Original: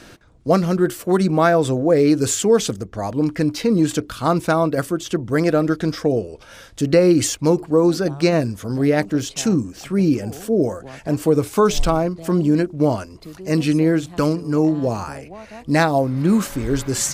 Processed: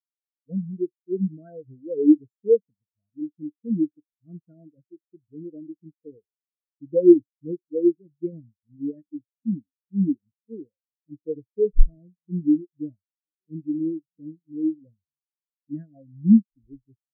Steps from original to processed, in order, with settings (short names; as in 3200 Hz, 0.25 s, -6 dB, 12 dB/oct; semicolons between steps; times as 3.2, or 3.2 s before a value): fixed phaser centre 2300 Hz, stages 4; spectral expander 4:1; gain +4.5 dB